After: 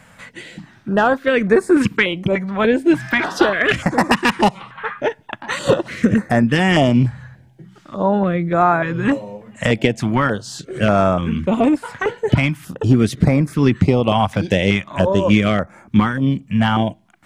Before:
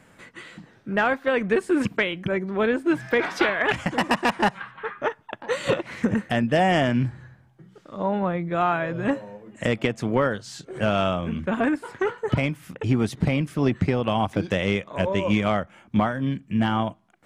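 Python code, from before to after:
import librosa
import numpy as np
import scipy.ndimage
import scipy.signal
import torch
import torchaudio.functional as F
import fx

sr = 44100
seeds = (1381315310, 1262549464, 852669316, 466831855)

y = fx.filter_held_notch(x, sr, hz=3.4, low_hz=350.0, high_hz=3000.0)
y = y * 10.0 ** (8.5 / 20.0)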